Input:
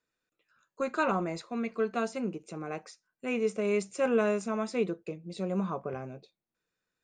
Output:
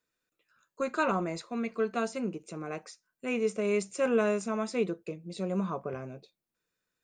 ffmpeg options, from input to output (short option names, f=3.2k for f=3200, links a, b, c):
-af "highshelf=f=7.5k:g=5.5,bandreject=f=790:w=20"